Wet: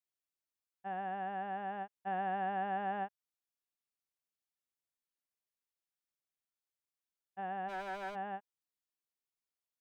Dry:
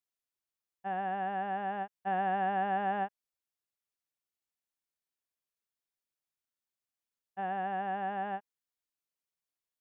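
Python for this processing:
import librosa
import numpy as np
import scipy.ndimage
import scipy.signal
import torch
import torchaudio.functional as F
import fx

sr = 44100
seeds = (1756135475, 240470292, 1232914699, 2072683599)

y = fx.lower_of_two(x, sr, delay_ms=3.0, at=(7.68, 8.14), fade=0.02)
y = y * librosa.db_to_amplitude(-5.0)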